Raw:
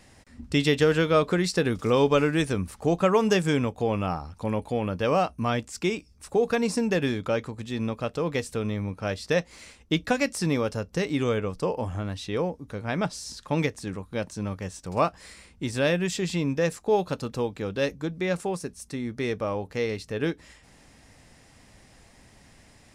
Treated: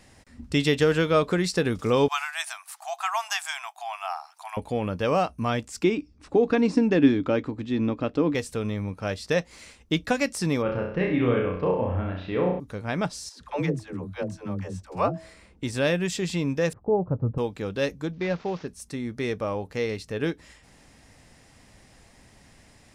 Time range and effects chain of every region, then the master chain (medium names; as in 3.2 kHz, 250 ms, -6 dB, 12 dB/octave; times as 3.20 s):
2.08–4.57 s: brick-wall FIR high-pass 640 Hz + treble shelf 10 kHz +10.5 dB
5.84–8.35 s: low-pass 4 kHz + peaking EQ 290 Hz +15 dB 0.42 oct
10.62–12.60 s: low-pass 2.8 kHz 24 dB/octave + flutter echo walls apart 5.6 m, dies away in 0.61 s
13.29–15.63 s: treble shelf 2.7 kHz -9.5 dB + de-hum 323.7 Hz, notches 2 + phase dispersion lows, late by 116 ms, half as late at 340 Hz
16.73–17.38 s: Bessel low-pass 730 Hz, order 4 + peaking EQ 110 Hz +14.5 dB 0.82 oct
18.13–18.68 s: CVSD coder 32 kbps + distance through air 93 m
whole clip: none